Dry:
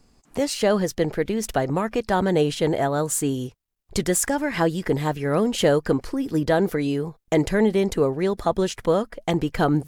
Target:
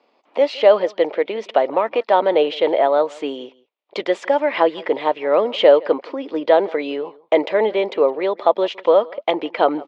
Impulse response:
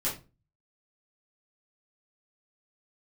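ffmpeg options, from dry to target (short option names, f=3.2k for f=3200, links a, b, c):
-af "highpass=f=350:w=0.5412,highpass=f=350:w=1.3066,equalizer=f=390:t=q:w=4:g=-3,equalizer=f=580:t=q:w=4:g=7,equalizer=f=950:t=q:w=4:g=4,equalizer=f=1.6k:t=q:w=4:g=-7,equalizer=f=2.3k:t=q:w=4:g=3,equalizer=f=3.4k:t=q:w=4:g=3,lowpass=f=3.5k:w=0.5412,lowpass=f=3.5k:w=1.3066,aecho=1:1:164:0.0708,volume=4.5dB"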